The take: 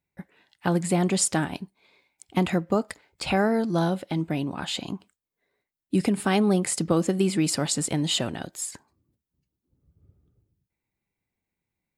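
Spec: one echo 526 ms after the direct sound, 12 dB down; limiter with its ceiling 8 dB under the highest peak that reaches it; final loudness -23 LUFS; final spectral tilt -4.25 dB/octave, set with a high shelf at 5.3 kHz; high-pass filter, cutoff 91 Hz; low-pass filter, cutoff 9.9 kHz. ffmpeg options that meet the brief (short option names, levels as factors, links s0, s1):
-af "highpass=91,lowpass=9900,highshelf=f=5300:g=6,alimiter=limit=0.158:level=0:latency=1,aecho=1:1:526:0.251,volume=1.58"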